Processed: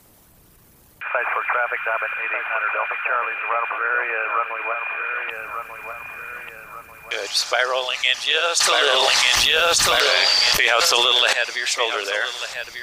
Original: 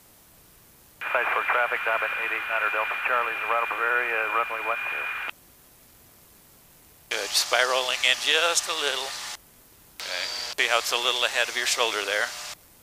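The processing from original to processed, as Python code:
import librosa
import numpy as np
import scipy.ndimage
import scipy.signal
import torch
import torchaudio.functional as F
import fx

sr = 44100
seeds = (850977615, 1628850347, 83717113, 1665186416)

y = fx.envelope_sharpen(x, sr, power=1.5)
y = fx.echo_feedback(y, sr, ms=1191, feedback_pct=41, wet_db=-8.0)
y = fx.env_flatten(y, sr, amount_pct=100, at=(8.6, 11.33))
y = y * 10.0 ** (2.0 / 20.0)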